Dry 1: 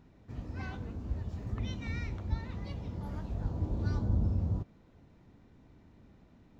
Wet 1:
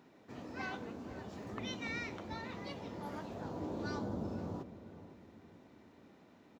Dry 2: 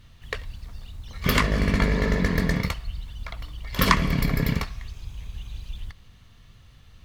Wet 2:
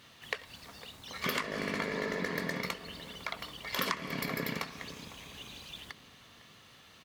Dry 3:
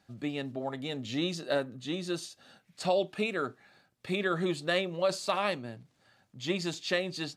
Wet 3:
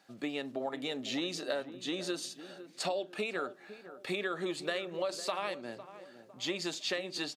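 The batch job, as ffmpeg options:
-filter_complex "[0:a]highpass=300,acompressor=threshold=0.0158:ratio=5,asplit=2[s0][s1];[s1]adelay=505,lowpass=f=1100:p=1,volume=0.237,asplit=2[s2][s3];[s3]adelay=505,lowpass=f=1100:p=1,volume=0.45,asplit=2[s4][s5];[s5]adelay=505,lowpass=f=1100:p=1,volume=0.45,asplit=2[s6][s7];[s7]adelay=505,lowpass=f=1100:p=1,volume=0.45[s8];[s0][s2][s4][s6][s8]amix=inputs=5:normalize=0,volume=1.58"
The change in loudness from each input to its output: -6.5 LU, -12.0 LU, -4.0 LU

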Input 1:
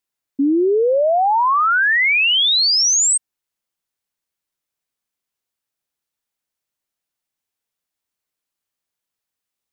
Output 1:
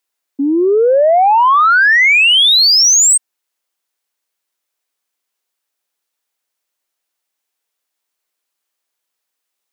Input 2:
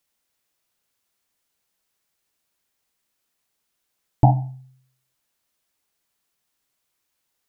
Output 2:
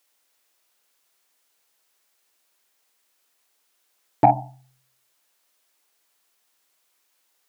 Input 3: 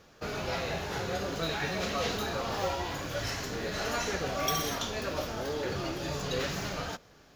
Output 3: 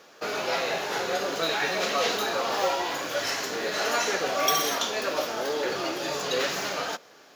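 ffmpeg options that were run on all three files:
-af "highpass=360,asoftclip=type=tanh:threshold=0.355,volume=2.24"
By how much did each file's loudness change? +6.0 LU, -0.5 LU, +6.0 LU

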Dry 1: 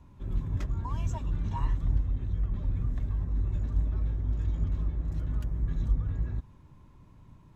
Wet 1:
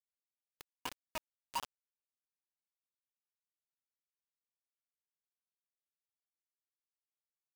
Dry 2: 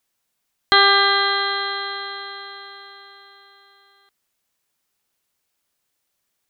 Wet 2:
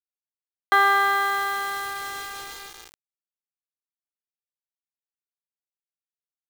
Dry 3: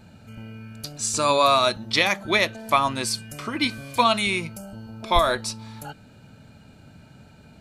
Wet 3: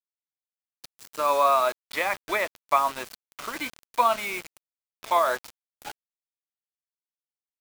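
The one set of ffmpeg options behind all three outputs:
-filter_complex "[0:a]highshelf=f=5600:g=-12,acrossover=split=2200[s0][s1];[s1]acompressor=threshold=0.00631:ratio=6[s2];[s0][s2]amix=inputs=2:normalize=0,aeval=exprs='val(0)+0.00794*(sin(2*PI*50*n/s)+sin(2*PI*2*50*n/s)/2+sin(2*PI*3*50*n/s)/3+sin(2*PI*4*50*n/s)/4+sin(2*PI*5*50*n/s)/5)':c=same,highpass=570,acrusher=bits=5:mix=0:aa=0.000001"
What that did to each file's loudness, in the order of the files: -13.0 LU, -5.0 LU, -3.5 LU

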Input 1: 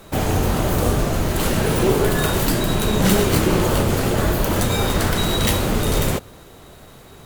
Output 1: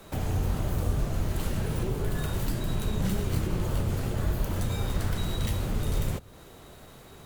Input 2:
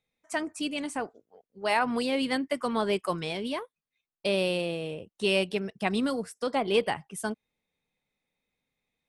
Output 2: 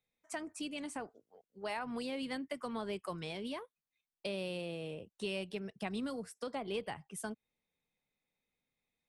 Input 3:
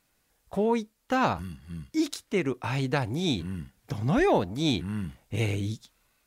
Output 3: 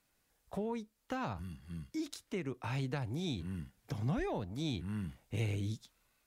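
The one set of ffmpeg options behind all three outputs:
-filter_complex "[0:a]acrossover=split=150[s0][s1];[s1]acompressor=threshold=0.02:ratio=2.5[s2];[s0][s2]amix=inputs=2:normalize=0,volume=0.531"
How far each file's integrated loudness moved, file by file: -11.0 LU, -11.5 LU, -11.0 LU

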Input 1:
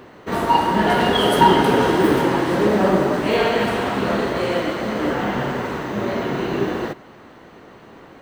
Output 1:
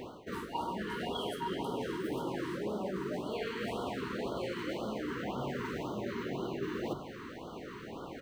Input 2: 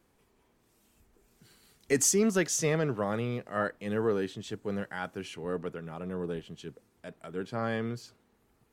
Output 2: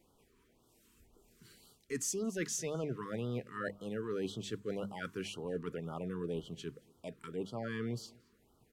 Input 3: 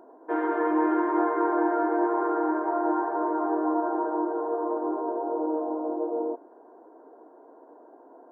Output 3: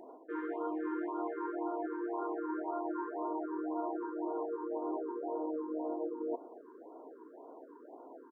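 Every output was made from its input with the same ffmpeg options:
-filter_complex "[0:a]bandreject=f=50:t=h:w=6,bandreject=f=100:t=h:w=6,bandreject=f=150:t=h:w=6,bandreject=f=200:t=h:w=6,areverse,acompressor=threshold=0.0224:ratio=12,areverse,asplit=2[s0][s1];[s1]adelay=227.4,volume=0.0562,highshelf=f=4000:g=-5.12[s2];[s0][s2]amix=inputs=2:normalize=0,afftfilt=real='re*(1-between(b*sr/1024,630*pow(2100/630,0.5+0.5*sin(2*PI*1.9*pts/sr))/1.41,630*pow(2100/630,0.5+0.5*sin(2*PI*1.9*pts/sr))*1.41))':imag='im*(1-between(b*sr/1024,630*pow(2100/630,0.5+0.5*sin(2*PI*1.9*pts/sr))/1.41,630*pow(2100/630,0.5+0.5*sin(2*PI*1.9*pts/sr))*1.41))':win_size=1024:overlap=0.75"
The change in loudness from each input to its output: -19.0 LU, -8.5 LU, -11.5 LU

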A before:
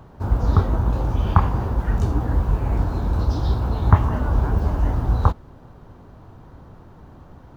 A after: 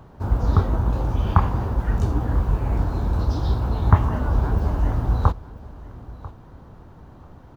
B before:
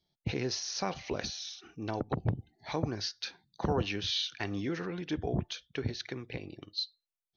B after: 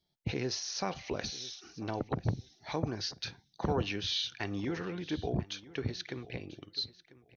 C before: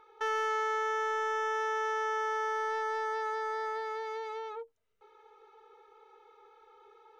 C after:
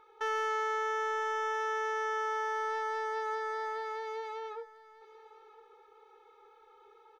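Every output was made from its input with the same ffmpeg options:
-af "aecho=1:1:993|1986:0.112|0.0191,volume=0.891"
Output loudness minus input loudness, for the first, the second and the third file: -1.0 LU, -1.0 LU, -1.0 LU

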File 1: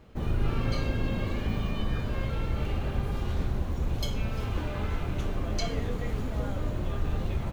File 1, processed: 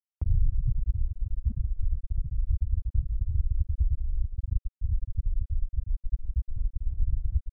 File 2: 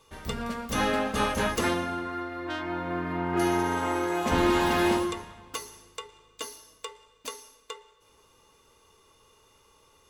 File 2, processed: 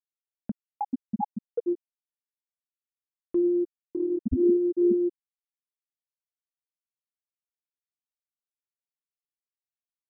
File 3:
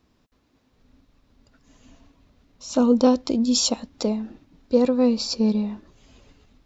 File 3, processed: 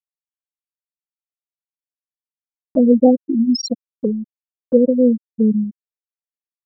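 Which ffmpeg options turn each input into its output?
-filter_complex "[0:a]afftfilt=real='re*gte(hypot(re,im),0.398)':imag='im*gte(hypot(re,im),0.398)':win_size=1024:overlap=0.75,acrossover=split=1900[s0][s1];[s0]acompressor=mode=upward:threshold=0.0501:ratio=2.5[s2];[s2][s1]amix=inputs=2:normalize=0,volume=1.88"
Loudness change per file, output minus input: 0.0 LU, +1.0 LU, +4.5 LU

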